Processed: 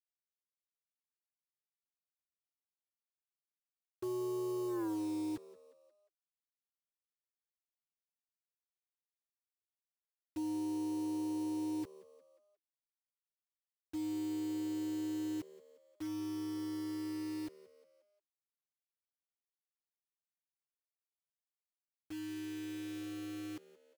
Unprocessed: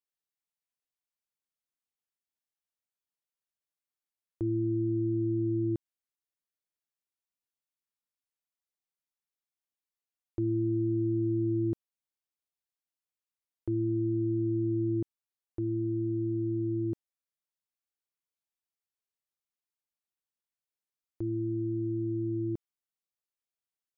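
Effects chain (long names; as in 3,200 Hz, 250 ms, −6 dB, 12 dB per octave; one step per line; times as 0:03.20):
expanding power law on the bin magnitudes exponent 3.9
source passing by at 0:04.82, 29 m/s, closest 2.7 metres
camcorder AGC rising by 21 dB per second
mains-hum notches 50/100/150/200 Hz
in parallel at +2 dB: brickwall limiter −36.5 dBFS, peak gain reduction 11 dB
on the sum: soft clipping −31.5 dBFS, distortion −15 dB
bit-depth reduction 8 bits, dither none
echo with shifted repeats 178 ms, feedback 50%, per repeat +75 Hz, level −19.5 dB
level −2.5 dB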